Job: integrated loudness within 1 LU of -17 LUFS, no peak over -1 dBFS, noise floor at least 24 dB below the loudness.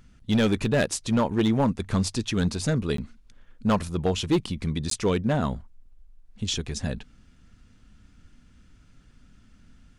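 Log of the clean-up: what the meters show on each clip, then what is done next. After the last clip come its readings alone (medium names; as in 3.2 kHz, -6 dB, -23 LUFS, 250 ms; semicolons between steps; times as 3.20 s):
clipped samples 0.9%; clipping level -16.0 dBFS; dropouts 2; longest dropout 13 ms; loudness -26.0 LUFS; peak level -16.0 dBFS; loudness target -17.0 LUFS
-> clip repair -16 dBFS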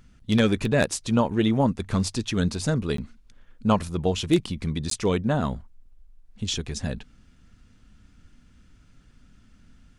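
clipped samples 0.0%; dropouts 2; longest dropout 13 ms
-> interpolate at 2.97/4.90 s, 13 ms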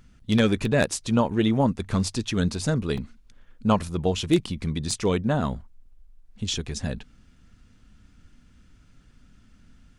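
dropouts 0; loudness -25.0 LUFS; peak level -7.0 dBFS; loudness target -17.0 LUFS
-> trim +8 dB; peak limiter -1 dBFS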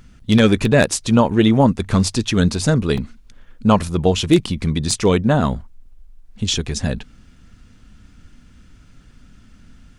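loudness -17.5 LUFS; peak level -1.0 dBFS; noise floor -49 dBFS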